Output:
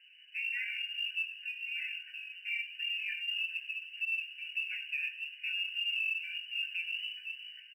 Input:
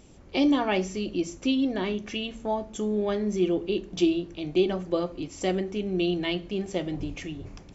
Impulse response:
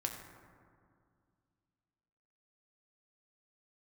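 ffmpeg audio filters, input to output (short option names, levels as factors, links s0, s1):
-filter_complex "[0:a]flanger=delay=5.6:depth=8.3:regen=0:speed=0.3:shape=triangular,asplit=2[s0][s1];[1:a]atrim=start_sample=2205,asetrate=66150,aresample=44100[s2];[s1][s2]afir=irnorm=-1:irlink=0,volume=0.178[s3];[s0][s3]amix=inputs=2:normalize=0,asettb=1/sr,asplit=3[s4][s5][s6];[s4]atrim=end=3.184[s7];[s5]atrim=start=3.18:end=4.12,asetpts=PTS-STARTPTS,afade=t=in:d=0.004:c=qsin,afade=t=out:st=0.936:d=0.004:c=qsin,acompressor=threshold=0.0355:ratio=12[s8];[s6]atrim=start=4.116[s9];[s7][s8]acrossfade=d=0.004:c1=hsin:c2=qsin[s10];[s10][s9]acrossfade=d=0.004:c1=qsin:c2=hsin,lowpass=f=2600:t=q:w=0.5098,lowpass=f=2600:t=q:w=0.6013,lowpass=f=2600:t=q:w=0.9,lowpass=f=2600:t=q:w=2.563,afreqshift=-3000,aecho=1:1:6.8:0.65,flanger=delay=17.5:depth=3.6:speed=1.7,acrusher=bits=7:mode=log:mix=0:aa=0.000001,equalizer=f=1200:w=1.6:g=12.5,alimiter=limit=0.0841:level=0:latency=1:release=176,asplit=7[s11][s12][s13][s14][s15][s16][s17];[s12]adelay=96,afreqshift=91,volume=0.141[s18];[s13]adelay=192,afreqshift=182,volume=0.0902[s19];[s14]adelay=288,afreqshift=273,volume=0.0575[s20];[s15]adelay=384,afreqshift=364,volume=0.0372[s21];[s16]adelay=480,afreqshift=455,volume=0.0237[s22];[s17]adelay=576,afreqshift=546,volume=0.0151[s23];[s11][s18][s19][s20][s21][s22][s23]amix=inputs=7:normalize=0,afftfilt=real='re*eq(mod(floor(b*sr/1024/1500),2),1)':imag='im*eq(mod(floor(b*sr/1024/1500),2),1)':win_size=1024:overlap=0.75,volume=0.562"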